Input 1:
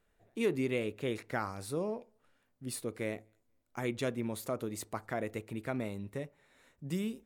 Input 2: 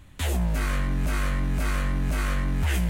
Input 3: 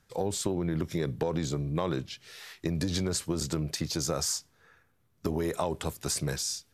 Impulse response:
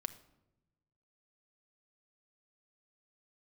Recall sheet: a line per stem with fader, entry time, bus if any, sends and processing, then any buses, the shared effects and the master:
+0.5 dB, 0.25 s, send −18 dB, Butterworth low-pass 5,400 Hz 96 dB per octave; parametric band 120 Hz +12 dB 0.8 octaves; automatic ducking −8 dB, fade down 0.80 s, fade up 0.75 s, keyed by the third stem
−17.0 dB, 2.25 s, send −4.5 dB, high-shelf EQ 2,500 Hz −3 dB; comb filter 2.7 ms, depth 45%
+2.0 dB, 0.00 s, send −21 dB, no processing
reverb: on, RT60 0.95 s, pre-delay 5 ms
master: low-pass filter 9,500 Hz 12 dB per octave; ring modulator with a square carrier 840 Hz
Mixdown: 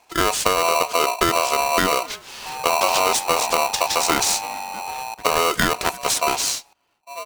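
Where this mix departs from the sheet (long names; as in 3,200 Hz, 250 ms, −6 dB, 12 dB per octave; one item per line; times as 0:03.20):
stem 2 −17.0 dB → −10.0 dB
stem 3 +2.0 dB → +10.5 dB
reverb return −6.0 dB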